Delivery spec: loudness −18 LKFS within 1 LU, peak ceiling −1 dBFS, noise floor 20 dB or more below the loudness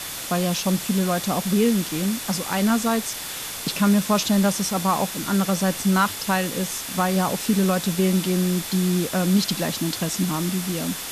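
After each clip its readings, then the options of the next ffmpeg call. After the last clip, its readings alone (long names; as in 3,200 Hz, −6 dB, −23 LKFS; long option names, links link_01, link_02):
interfering tone 3,500 Hz; level of the tone −43 dBFS; background noise floor −33 dBFS; target noise floor −43 dBFS; integrated loudness −22.5 LKFS; sample peak −8.5 dBFS; target loudness −18.0 LKFS
→ -af "bandreject=frequency=3500:width=30"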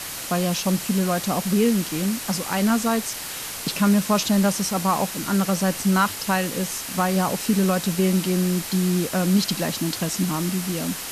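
interfering tone none found; background noise floor −33 dBFS; target noise floor −43 dBFS
→ -af "afftdn=noise_reduction=10:noise_floor=-33"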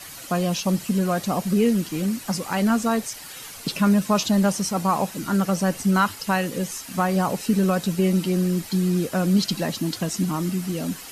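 background noise floor −40 dBFS; target noise floor −43 dBFS
→ -af "afftdn=noise_reduction=6:noise_floor=-40"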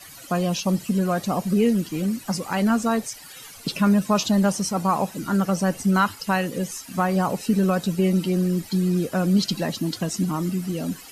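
background noise floor −43 dBFS; integrated loudness −23.0 LKFS; sample peak −9.0 dBFS; target loudness −18.0 LKFS
→ -af "volume=5dB"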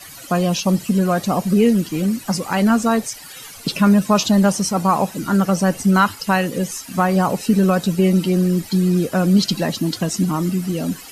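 integrated loudness −18.0 LKFS; sample peak −4.0 dBFS; background noise floor −38 dBFS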